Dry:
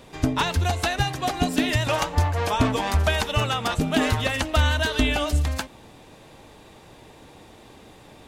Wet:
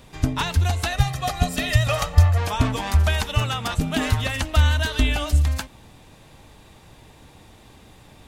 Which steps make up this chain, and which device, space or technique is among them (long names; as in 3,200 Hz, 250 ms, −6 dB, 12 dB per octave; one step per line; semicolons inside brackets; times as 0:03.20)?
0:00.92–0:02.38: comb filter 1.6 ms, depth 66%
smiley-face EQ (low-shelf EQ 150 Hz +7 dB; parametric band 420 Hz −5 dB 1.7 octaves; high-shelf EQ 9,100 Hz +4 dB)
level −1 dB